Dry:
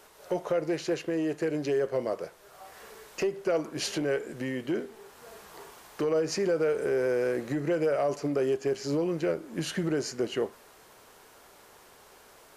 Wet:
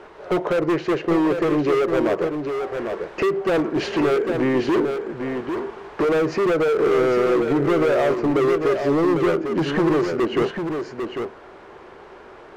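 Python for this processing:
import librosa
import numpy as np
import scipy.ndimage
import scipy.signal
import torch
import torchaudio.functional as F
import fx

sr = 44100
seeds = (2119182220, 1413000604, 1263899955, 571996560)

p1 = scipy.signal.sosfilt(scipy.signal.butter(2, 2100.0, 'lowpass', fs=sr, output='sos'), x)
p2 = fx.peak_eq(p1, sr, hz=360.0, db=7.5, octaves=0.41)
p3 = fx.rider(p2, sr, range_db=10, speed_s=0.5)
p4 = p2 + (p3 * 10.0 ** (-2.0 / 20.0))
p5 = np.clip(p4, -10.0 ** (-23.0 / 20.0), 10.0 ** (-23.0 / 20.0))
p6 = p5 + fx.echo_single(p5, sr, ms=799, db=-6.5, dry=0)
y = p6 * 10.0 ** (6.0 / 20.0)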